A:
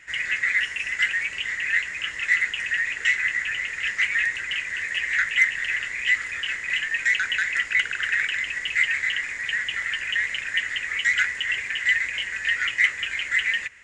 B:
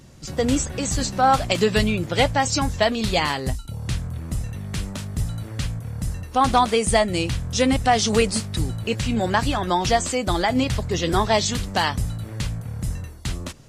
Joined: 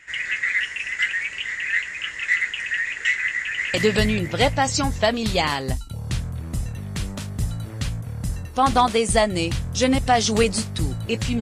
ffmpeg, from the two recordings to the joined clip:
-filter_complex "[0:a]apad=whole_dur=11.41,atrim=end=11.41,atrim=end=3.742[s0];[1:a]atrim=start=1.518:end=9.19[s1];[s0][s1]acrossfade=d=0.004:c1=hsin:c2=hsin,asplit=2[s2][s3];[s3]afade=t=in:st=3.36:d=0.01,afade=t=out:st=3.74:d=0.01,aecho=0:1:220|440|660|880|1100|1320|1540|1760:0.841395|0.462767|0.254522|0.139987|0.0769929|0.0423461|0.0232904|0.0128097[s4];[s2][s4]amix=inputs=2:normalize=0"

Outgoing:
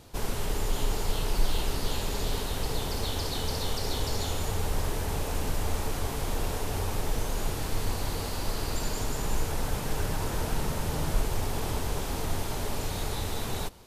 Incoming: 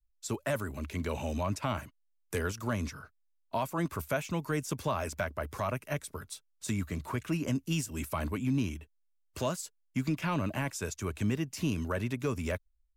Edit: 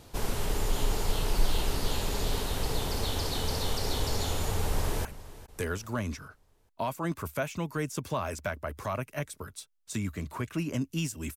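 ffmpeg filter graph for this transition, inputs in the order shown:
-filter_complex "[0:a]apad=whole_dur=11.36,atrim=end=11.36,atrim=end=5.052[s0];[1:a]atrim=start=1.788:end=8.1[s1];[s0][s1]acrossfade=d=0.004:c1=hsin:c2=hsin,asplit=2[s2][s3];[s3]afade=t=in:st=4.66:d=0.01,afade=t=out:st=5.05:d=0.01,aecho=0:1:410|820|1230|1640:0.141254|0.0635642|0.0286039|0.0128717[s4];[s2][s4]amix=inputs=2:normalize=0"

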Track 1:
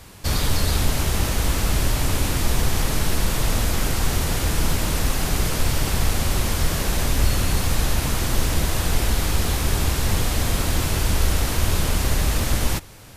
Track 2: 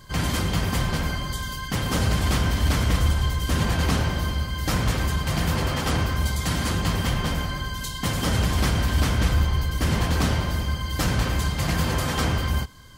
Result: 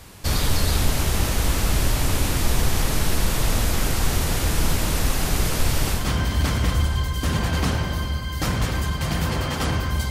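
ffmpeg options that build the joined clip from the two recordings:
-filter_complex "[0:a]apad=whole_dur=10.1,atrim=end=10.1,atrim=end=6.11,asetpts=PTS-STARTPTS[s0];[1:a]atrim=start=2.17:end=6.36,asetpts=PTS-STARTPTS[s1];[s0][s1]acrossfade=d=0.2:c1=tri:c2=tri"

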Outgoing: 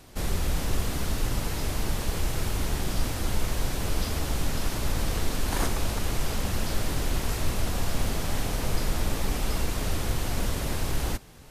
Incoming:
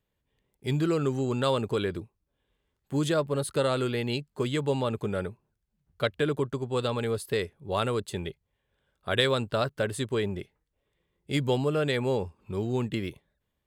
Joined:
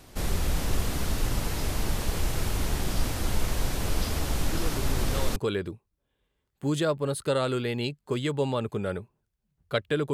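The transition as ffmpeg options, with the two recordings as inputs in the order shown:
-filter_complex "[1:a]asplit=2[s0][s1];[0:a]apad=whole_dur=10.13,atrim=end=10.13,atrim=end=5.362[s2];[s1]atrim=start=1.648:end=6.42[s3];[s0]atrim=start=0.79:end=1.65,asetpts=PTS-STARTPTS,volume=0.316,afade=t=in:d=0.004:c=hsin,afade=t=out:st=0.856:d=0.004:c=hsin,adelay=4500[s4];[s2][s3]acrossfade=d=0.004:c1=hsin:c2=hsin[s5];[s5][s4]amix=inputs=2:normalize=0"

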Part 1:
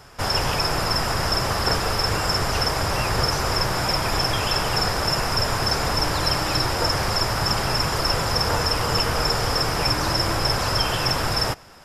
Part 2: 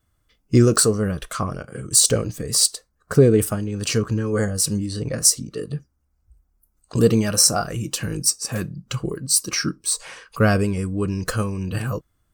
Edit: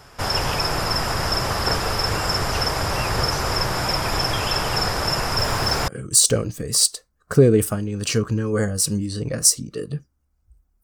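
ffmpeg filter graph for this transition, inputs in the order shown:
-filter_complex "[0:a]asettb=1/sr,asplit=3[s0][s1][s2];[s0]atrim=end=5.384[s3];[s1]atrim=start=5.38:end=5.88,asetpts=PTS-STARTPTS,afade=t=in:d=0.004:c=qsin,afade=t=out:st=0.496:d=0.004:c=qsin,aeval=exprs='val(0)+0.5*0.0188*sgn(val(0))':c=same[s4];[s2]atrim=start=5.876[s5];[s3][s4]acrossfade=d=0.004:c1=hsin:c2=qsin[s6];[s6][s5]acrossfade=d=0.004:c1=qsin:c2=hsin,apad=whole_dur=10.83,atrim=end=10.83,atrim=end=5.882[s7];[1:a]atrim=start=1.678:end=6.63[s8];[s7][s8]acrossfade=d=0.004:c1=hsin:c2=hsin"

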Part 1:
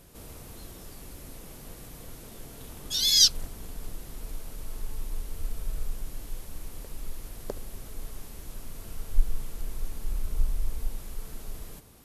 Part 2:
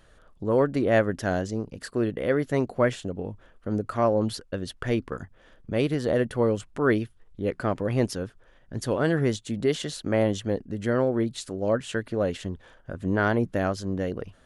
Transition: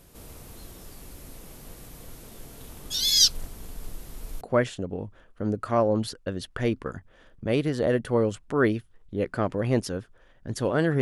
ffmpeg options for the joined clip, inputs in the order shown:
-filter_complex "[0:a]apad=whole_dur=11.01,atrim=end=11.01,atrim=end=4.412[s0];[1:a]atrim=start=2.668:end=9.27[s1];[s0][s1]acrossfade=d=0.004:c1=hsin:c2=hsin"

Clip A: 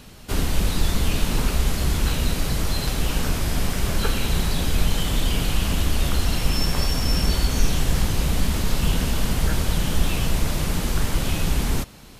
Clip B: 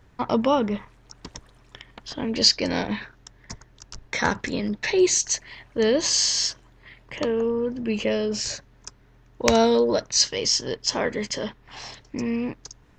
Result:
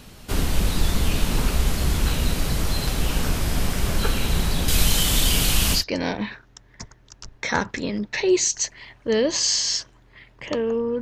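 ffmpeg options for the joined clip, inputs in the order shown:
-filter_complex "[0:a]asettb=1/sr,asplit=3[s0][s1][s2];[s0]atrim=end=4.684[s3];[s1]atrim=start=4.68:end=5.84,asetpts=PTS-STARTPTS,afade=t=in:d=0.004:c=qsin,afade=t=out:st=1.156:d=0.004:c=qsin,highshelf=f=2700:g=11.5[s4];[s2]atrim=start=5.836[s5];[s3][s4]acrossfade=d=0.004:c1=hsin:c2=qsin[s6];[s6][s5]acrossfade=d=0.004:c1=qsin:c2=hsin,apad=whole_dur=11.01,atrim=end=11.01,atrim=end=5.84,asetpts=PTS-STARTPTS[s7];[1:a]atrim=start=2.42:end=7.71,asetpts=PTS-STARTPTS[s8];[s7][s8]acrossfade=d=0.12:c1=tri:c2=tri"

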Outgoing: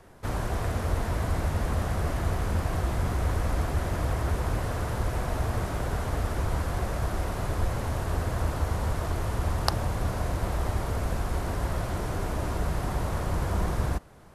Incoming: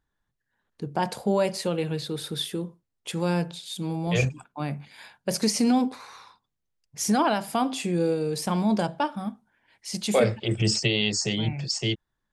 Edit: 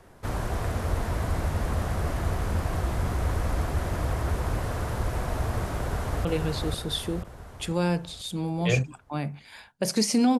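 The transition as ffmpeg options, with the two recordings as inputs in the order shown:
-filter_complex "[0:a]apad=whole_dur=10.39,atrim=end=10.39,atrim=end=6.252[s0];[1:a]atrim=start=1.708:end=5.85[s1];[s0][s1]acrossfade=d=0.004:c1=hsin:c2=hsin,asplit=2[s2][s3];[s3]afade=t=in:st=5.77:d=0.01,afade=t=out:st=6.25:d=0.01,aecho=0:1:490|980|1470|1960|2450|2940|3430:0.749894|0.374947|0.187474|0.0937368|0.0468684|0.0234342|0.0117171[s4];[s2][s4]amix=inputs=2:normalize=0"

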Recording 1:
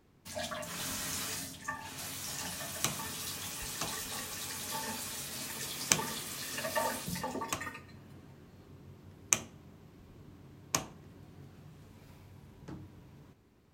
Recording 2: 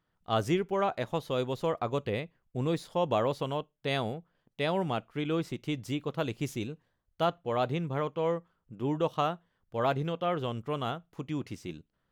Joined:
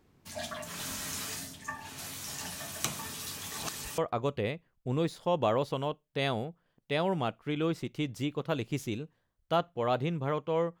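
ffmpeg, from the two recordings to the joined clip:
-filter_complex "[0:a]apad=whole_dur=10.8,atrim=end=10.8,asplit=2[s0][s1];[s0]atrim=end=3.522[s2];[s1]atrim=start=3.518:end=3.982,asetpts=PTS-STARTPTS,areverse[s3];[1:a]atrim=start=1.668:end=8.49[s4];[s2][s3]acrossfade=d=0.004:c1=hsin:c2=hsin[s5];[s5][s4]acrossfade=d=0.004:c1=hsin:c2=hsin"

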